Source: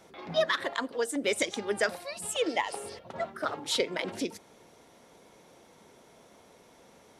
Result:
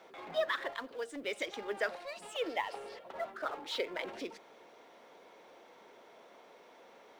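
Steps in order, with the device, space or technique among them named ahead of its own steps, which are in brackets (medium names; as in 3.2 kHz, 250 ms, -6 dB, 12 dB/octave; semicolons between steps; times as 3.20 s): phone line with mismatched companding (band-pass 390–3400 Hz; companding laws mixed up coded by mu); 0.72–1.43 s: peaking EQ 870 Hz -4.5 dB 2.4 oct; trim -6 dB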